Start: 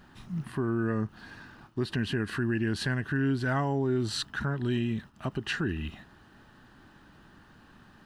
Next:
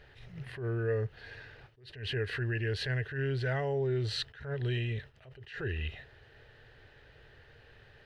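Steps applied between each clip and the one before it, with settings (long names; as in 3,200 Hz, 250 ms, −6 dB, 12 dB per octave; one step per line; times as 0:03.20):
drawn EQ curve 130 Hz 0 dB, 180 Hz −19 dB, 310 Hz −15 dB, 450 Hz +7 dB, 1,100 Hz −14 dB, 2,000 Hz +4 dB, 2,900 Hz 0 dB, 4,200 Hz −2 dB, 7,500 Hz −13 dB
in parallel at −1.5 dB: brickwall limiter −29.5 dBFS, peak gain reduction 10 dB
on the sum: level that may rise only so fast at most 120 dB per second
level −3.5 dB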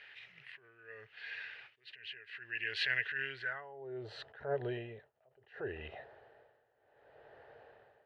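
amplitude tremolo 0.67 Hz, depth 89%
band-pass filter sweep 2,400 Hz → 680 Hz, 0:03.29–0:03.87
level +11 dB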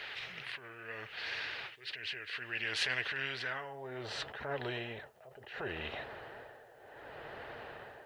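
flanger 2 Hz, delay 2.7 ms, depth 3.9 ms, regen +54%
every bin compressed towards the loudest bin 2 to 1
level +5 dB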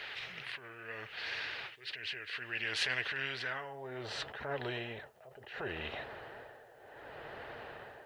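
no processing that can be heard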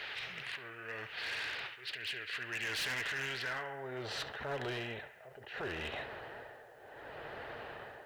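feedback echo with a band-pass in the loop 69 ms, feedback 70%, band-pass 1,600 Hz, level −11 dB
gain into a clipping stage and back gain 34.5 dB
level +1 dB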